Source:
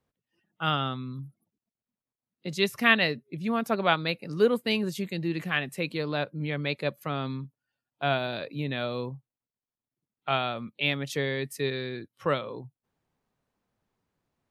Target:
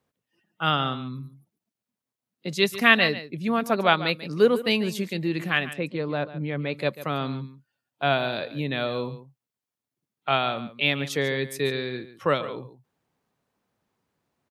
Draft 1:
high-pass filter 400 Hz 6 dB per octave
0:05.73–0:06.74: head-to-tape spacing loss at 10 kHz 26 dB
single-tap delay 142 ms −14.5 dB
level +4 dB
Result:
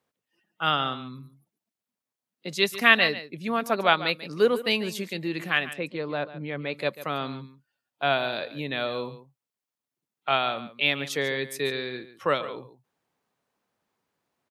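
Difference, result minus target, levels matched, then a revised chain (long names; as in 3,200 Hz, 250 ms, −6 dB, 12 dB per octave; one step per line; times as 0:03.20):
125 Hz band −6.0 dB
high-pass filter 120 Hz 6 dB per octave
0:05.73–0:06.74: head-to-tape spacing loss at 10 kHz 26 dB
single-tap delay 142 ms −14.5 dB
level +4 dB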